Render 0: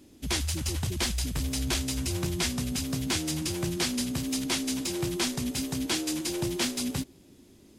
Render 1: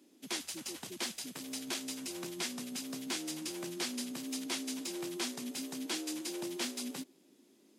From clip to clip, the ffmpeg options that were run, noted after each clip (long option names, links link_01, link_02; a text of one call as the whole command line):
ffmpeg -i in.wav -af "highpass=frequency=220:width=0.5412,highpass=frequency=220:width=1.3066,volume=-8dB" out.wav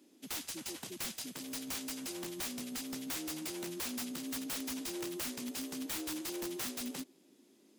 ffmpeg -i in.wav -af "aeval=exprs='(mod(42.2*val(0)+1,2)-1)/42.2':channel_layout=same" out.wav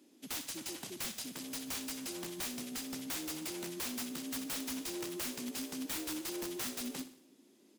ffmpeg -i in.wav -af "aecho=1:1:62|124|186|248|310:0.224|0.112|0.056|0.028|0.014" out.wav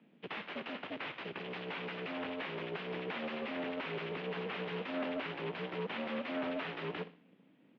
ffmpeg -i in.wav -af "aeval=exprs='0.0316*(cos(1*acos(clip(val(0)/0.0316,-1,1)))-cos(1*PI/2))+0.0158*(cos(6*acos(clip(val(0)/0.0316,-1,1)))-cos(6*PI/2))':channel_layout=same,highpass=frequency=300:width_type=q:width=0.5412,highpass=frequency=300:width_type=q:width=1.307,lowpass=frequency=3000:width_type=q:width=0.5176,lowpass=frequency=3000:width_type=q:width=0.7071,lowpass=frequency=3000:width_type=q:width=1.932,afreqshift=-85,volume=2.5dB" out.wav